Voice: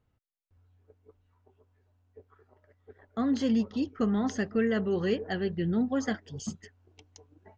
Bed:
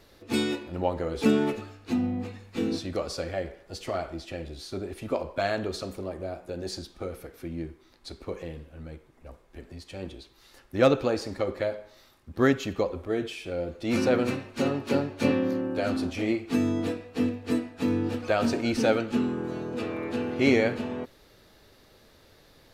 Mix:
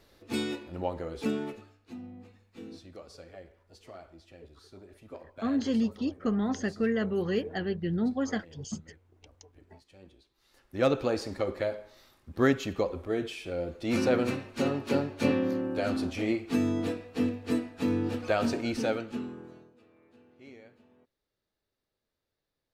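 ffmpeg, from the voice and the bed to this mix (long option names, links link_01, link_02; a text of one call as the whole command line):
ffmpeg -i stem1.wav -i stem2.wav -filter_complex "[0:a]adelay=2250,volume=-1dB[link_01];[1:a]volume=9.5dB,afade=type=out:start_time=0.85:duration=1:silence=0.266073,afade=type=in:start_time=10.34:duration=0.79:silence=0.188365,afade=type=out:start_time=18.31:duration=1.43:silence=0.0421697[link_02];[link_01][link_02]amix=inputs=2:normalize=0" out.wav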